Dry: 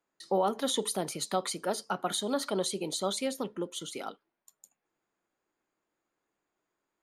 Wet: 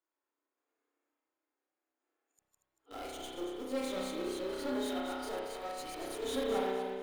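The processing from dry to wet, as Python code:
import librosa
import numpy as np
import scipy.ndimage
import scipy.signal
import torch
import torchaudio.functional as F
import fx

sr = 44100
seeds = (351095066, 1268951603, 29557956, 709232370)

p1 = x[::-1].copy()
p2 = scipy.signal.sosfilt(scipy.signal.ellip(4, 1.0, 40, 260.0, 'highpass', fs=sr, output='sos'), p1)
p3 = fx.tube_stage(p2, sr, drive_db=35.0, bias=0.45)
p4 = fx.hpss(p3, sr, part='percussive', gain_db=-11)
p5 = fx.quant_dither(p4, sr, seeds[0], bits=8, dither='none')
p6 = p4 + F.gain(torch.from_numpy(p5), -5.5).numpy()
p7 = fx.tremolo_random(p6, sr, seeds[1], hz=3.5, depth_pct=55)
p8 = p7 + fx.echo_feedback(p7, sr, ms=233, feedback_pct=37, wet_db=-8, dry=0)
y = fx.rev_spring(p8, sr, rt60_s=1.3, pass_ms=(31,), chirp_ms=65, drr_db=-3.0)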